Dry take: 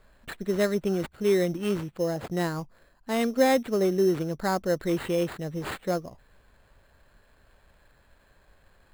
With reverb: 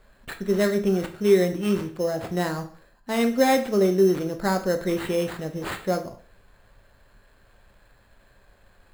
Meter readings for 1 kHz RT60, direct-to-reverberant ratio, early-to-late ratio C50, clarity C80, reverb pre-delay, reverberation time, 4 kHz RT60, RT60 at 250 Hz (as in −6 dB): 0.45 s, 5.5 dB, 12.0 dB, 16.0 dB, 4 ms, 0.45 s, 0.45 s, 0.40 s